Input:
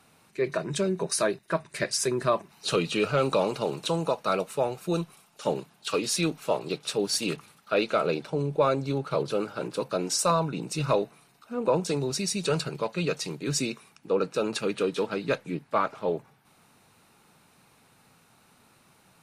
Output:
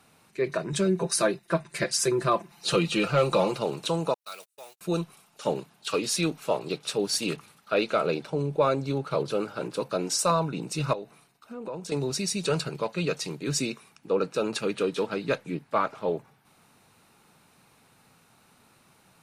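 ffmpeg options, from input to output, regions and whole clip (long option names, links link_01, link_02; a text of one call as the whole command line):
ffmpeg -i in.wav -filter_complex "[0:a]asettb=1/sr,asplit=3[link_01][link_02][link_03];[link_01]atrim=end=0.724[link_04];[link_02]atrim=start=0.72:end=3.59,asetpts=PTS-STARTPTS,afade=type=in:duration=0.004:curve=qsin,afade=type=out:start_time=2.866:duration=0.004:curve=qsin,aecho=1:1:5.8:0.68,atrim=end_sample=126567,asoftclip=type=hard:threshold=-13dB[link_05];[link_03]atrim=start=3.586[link_06];[link_04][link_05]acrossfade=duration=0.004:curve1=hsin:curve2=qsin[link_07];[link_07][link_06]acrossfade=duration=0.004:curve1=qsin:curve2=hsin,asettb=1/sr,asplit=3[link_08][link_09][link_10];[link_08]atrim=end=4.144[link_11];[link_09]atrim=start=4.14:end=4.81,asetpts=PTS-STARTPTS,afade=type=in:duration=0.004:curve=qsin,afade=type=out:start_time=0.666:duration=0.004:curve=qsin,aeval=exprs='val(0)+0.5*0.01*sgn(val(0))':channel_layout=same,agate=range=-43dB:threshold=-31dB:ratio=16:release=100:detection=peak,aderivative[link_12];[link_10]atrim=start=4.806[link_13];[link_11][link_12]acrossfade=duration=0.004:curve1=hsin:curve2=qsin[link_14];[link_14][link_13]acrossfade=duration=0.004:curve1=qsin:curve2=hsin,asettb=1/sr,asplit=3[link_15][link_16][link_17];[link_15]atrim=end=10.934[link_18];[link_16]atrim=start=10.93:end=11.92,asetpts=PTS-STARTPTS,afade=type=in:duration=0.004:curve=qsin,afade=type=out:start_time=0.986:duration=0.004:curve=qsin,agate=range=-33dB:threshold=-58dB:ratio=3:release=100:detection=peak,acompressor=threshold=-38dB:ratio=2.5:attack=3.2:release=140:knee=1:detection=peak[link_19];[link_17]atrim=start=11.916[link_20];[link_18][link_19]acrossfade=duration=0.004:curve1=hsin:curve2=qsin[link_21];[link_21][link_20]acrossfade=duration=0.004:curve1=qsin:curve2=hsin" out.wav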